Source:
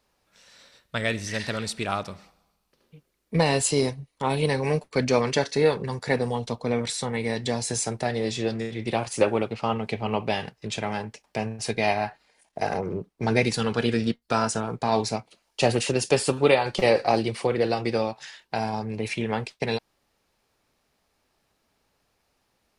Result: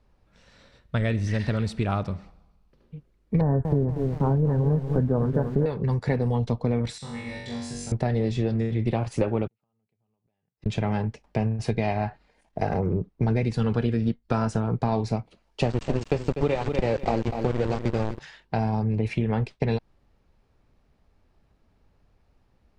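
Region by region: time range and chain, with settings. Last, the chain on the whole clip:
3.41–5.66 elliptic low-pass 1600 Hz + low shelf 340 Hz +7 dB + lo-fi delay 0.238 s, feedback 55%, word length 6-bit, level -9 dB
6.98–7.92 passive tone stack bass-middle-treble 5-5-5 + flutter echo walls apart 3.6 m, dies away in 1 s
9.47–10.66 compressor 4:1, threshold -41 dBFS + HPF 96 Hz + flipped gate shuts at -39 dBFS, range -40 dB
15.63–18.19 sample gate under -23.5 dBFS + brick-wall FIR low-pass 8600 Hz + lo-fi delay 0.246 s, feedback 35%, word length 7-bit, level -11 dB
whole clip: RIAA curve playback; compressor, threshold -20 dBFS

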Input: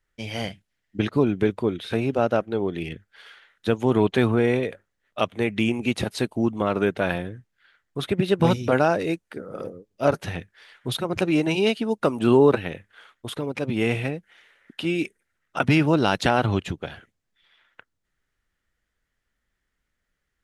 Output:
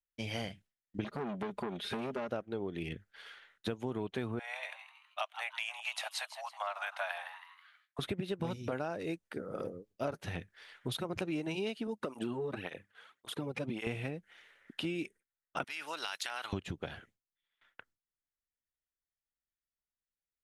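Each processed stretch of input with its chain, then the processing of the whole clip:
1.04–2.29 comb 4.9 ms, depth 79% + compressor 4:1, threshold -19 dBFS + core saturation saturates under 1100 Hz
4.39–7.99 steep high-pass 640 Hz 72 dB/oct + frequency-shifting echo 0.161 s, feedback 40%, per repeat +140 Hz, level -13.5 dB
11.87–13.87 compressor, threshold -20 dBFS + tape flanging out of phase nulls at 1.8 Hz, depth 3.6 ms
15.64–16.53 HPF 1400 Hz + high shelf 7400 Hz +8.5 dB + compressor 5:1, threshold -27 dBFS
whole clip: gate with hold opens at -49 dBFS; compressor 6:1, threshold -29 dBFS; gain -4.5 dB

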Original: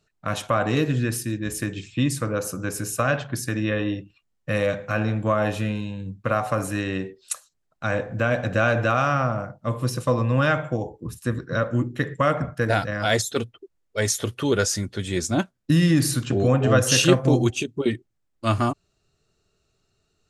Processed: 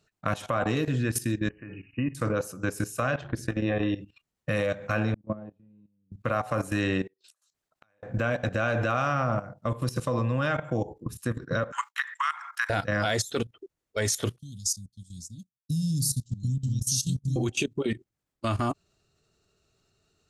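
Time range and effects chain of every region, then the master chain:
1.49–2.15 brick-wall FIR low-pass 3000 Hz + resonator 280 Hz, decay 0.46 s
3.21–3.83 LPF 2700 Hz 6 dB/oct + dynamic EQ 1600 Hz, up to -3 dB, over -41 dBFS, Q 1.7 + AM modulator 210 Hz, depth 50%
5.14–6.12 gate -21 dBFS, range -27 dB + band-pass 200 Hz, Q 1.3
7.07–8.03 low shelf 330 Hz -9 dB + compressor 3:1, threshold -42 dBFS + flipped gate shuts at -39 dBFS, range -25 dB
11.72–12.7 steep high-pass 900 Hz 72 dB/oct + expander -56 dBFS + three-band squash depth 100%
14.38–17.36 inverse Chebyshev band-stop 390–2300 Hz + tone controls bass +7 dB, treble +10 dB + upward expander 2.5:1, over -30 dBFS
whole clip: compressor 2:1, threshold -24 dBFS; HPF 41 Hz 6 dB/oct; level quantiser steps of 15 dB; gain +4 dB

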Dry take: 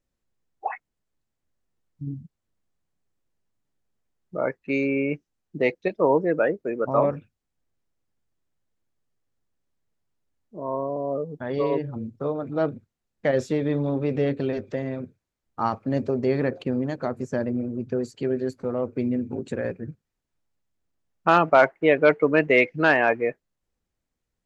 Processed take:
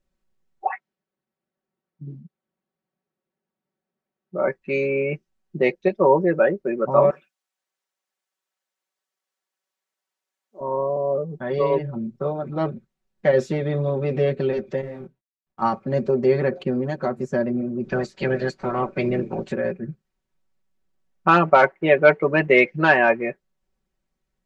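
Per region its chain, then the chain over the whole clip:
0.69–4.48 BPF 190–5500 Hz + notch 1000 Hz, Q 23 + mismatched tape noise reduction decoder only
7.1–10.61 HPF 720 Hz + high shelf 4300 Hz +6.5 dB
14.81–15.62 G.711 law mismatch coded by A + high shelf 4200 Hz -10 dB + detuned doubles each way 20 cents
17.83–19.51 spectral limiter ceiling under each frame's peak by 20 dB + LPF 5800 Hz
whole clip: high shelf 5900 Hz -7.5 dB; comb 5.3 ms, depth 78%; gain +1.5 dB

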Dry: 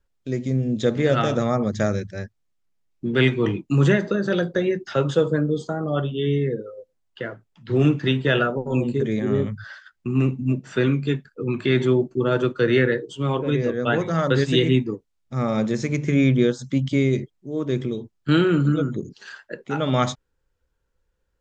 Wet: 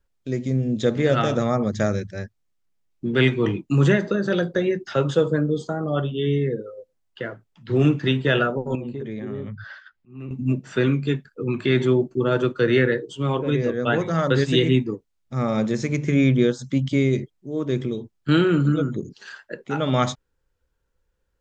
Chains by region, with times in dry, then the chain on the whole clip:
8.75–10.31 LPF 4000 Hz + compressor 2.5:1, threshold -31 dBFS + auto swell 0.315 s
whole clip: dry

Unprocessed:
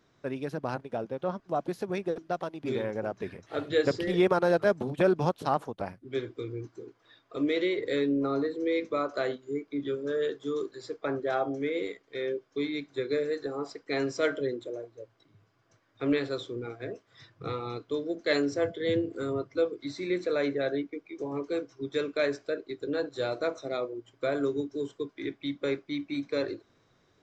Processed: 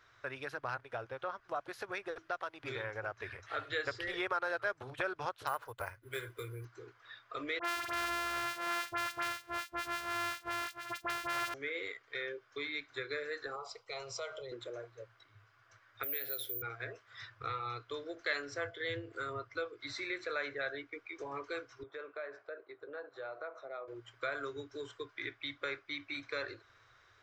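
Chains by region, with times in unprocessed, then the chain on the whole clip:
5.47–6.65 comb 2 ms, depth 33% + careless resampling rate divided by 4×, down none, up hold
7.59–11.54 sample sorter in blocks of 128 samples + HPF 200 Hz 6 dB/oct + dispersion highs, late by 58 ms, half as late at 1800 Hz
13.56–14.52 compressor 3:1, threshold -30 dBFS + fixed phaser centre 700 Hz, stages 4
16.03–16.62 compressor 2:1, threshold -36 dBFS + fixed phaser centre 450 Hz, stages 4 + careless resampling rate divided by 3×, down filtered, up zero stuff
21.83–23.88 band-pass 620 Hz, Q 1.2 + compressor 2:1, threshold -41 dBFS
whole clip: EQ curve 120 Hz 0 dB, 170 Hz -25 dB, 360 Hz -14 dB, 880 Hz -6 dB, 1400 Hz +4 dB, 7300 Hz -12 dB; compressor 2:1, threshold -47 dBFS; tone controls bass -7 dB, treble +5 dB; gain +6.5 dB

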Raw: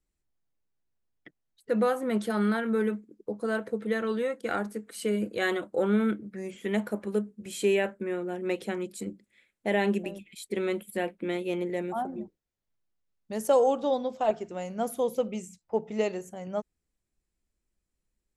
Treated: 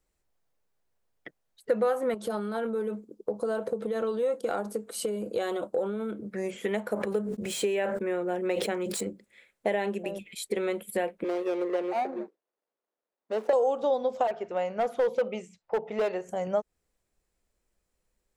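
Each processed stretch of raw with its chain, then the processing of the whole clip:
2.14–6.28 bell 1900 Hz -11.5 dB 0.79 oct + compressor 10:1, threshold -32 dBFS
6.94–9.01 median filter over 3 samples + expander -53 dBFS + sustainer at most 43 dB/s
11.24–13.53 median filter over 41 samples + HPF 280 Hz 24 dB/oct + high shelf 6600 Hz -10 dB
14.27–16.29 LPF 3300 Hz + low shelf 370 Hz -8.5 dB + overloaded stage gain 28.5 dB
whole clip: compressor, threshold -33 dBFS; EQ curve 310 Hz 0 dB, 490 Hz +9 dB, 2900 Hz +3 dB; gain +2.5 dB

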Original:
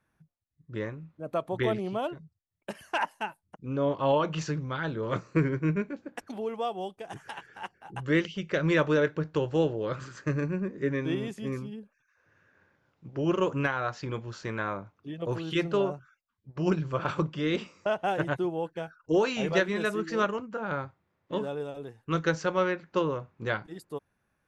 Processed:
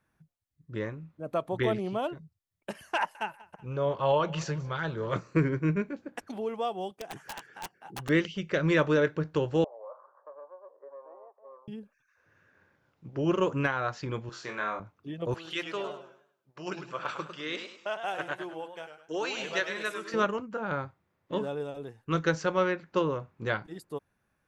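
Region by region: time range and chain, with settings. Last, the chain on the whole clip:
2.96–5.16 bell 270 Hz -14 dB 0.29 oct + feedback echo 0.188 s, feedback 50%, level -21.5 dB
6.91–8.09 HPF 140 Hz + wrapped overs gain 29.5 dB
9.64–11.68 elliptic band-pass 550–1100 Hz, stop band 60 dB + compressor 2:1, threshold -45 dBFS
14.29–14.8 HPF 600 Hz 6 dB/oct + flutter echo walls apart 4 m, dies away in 0.27 s
15.34–20.14 HPF 1200 Hz 6 dB/oct + warbling echo 0.102 s, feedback 34%, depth 113 cents, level -8.5 dB
whole clip: dry

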